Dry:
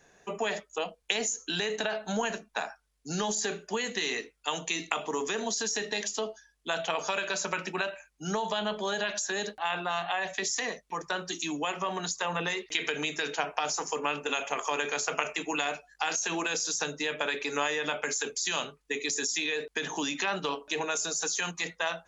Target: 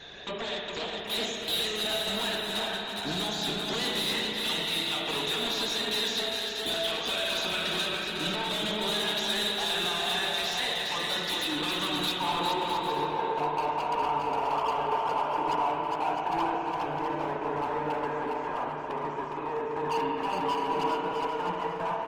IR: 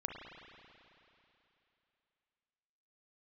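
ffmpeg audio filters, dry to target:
-filter_complex "[0:a]acompressor=threshold=-42dB:ratio=5,aeval=exprs='0.0631*sin(PI/2*6.31*val(0)/0.0631)':c=same,asetnsamples=n=441:p=0,asendcmd='12.12 lowpass f 950',lowpass=f=3.7k:t=q:w=9.9,asoftclip=type=hard:threshold=-21.5dB,aecho=1:1:410|656|803.6|892.2|945.3:0.631|0.398|0.251|0.158|0.1[a];[1:a]atrim=start_sample=2205[b];[a][b]afir=irnorm=-1:irlink=0,volume=-5.5dB" -ar 48000 -c:a libopus -b:a 24k

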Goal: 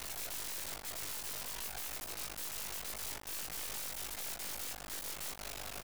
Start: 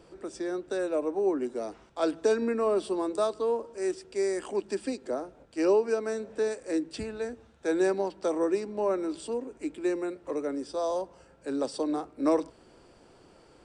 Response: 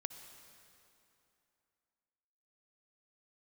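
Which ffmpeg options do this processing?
-filter_complex "[0:a]highpass=59,bandreject=f=490:w=13,tremolo=f=21:d=0.947,firequalizer=gain_entry='entry(220,0);entry(360,12);entry(620,-9);entry(1400,-17)':delay=0.05:min_phase=1,acrossover=split=180|1000[a][b][c];[b]acompressor=threshold=-43dB:ratio=8[d];[a][d][c]amix=inputs=3:normalize=0,alimiter=level_in=11.5dB:limit=-24dB:level=0:latency=1:release=21,volume=-11.5dB,aeval=exprs='(mod(398*val(0)+1,2)-1)/398':c=same,afreqshift=-56,asetrate=103194,aresample=44100,acrusher=bits=7:dc=4:mix=0:aa=0.000001,highshelf=f=4.1k:g=6.5,asplit=2[e][f];[f]adelay=19,volume=-6dB[g];[e][g]amix=inputs=2:normalize=0,volume=14dB"

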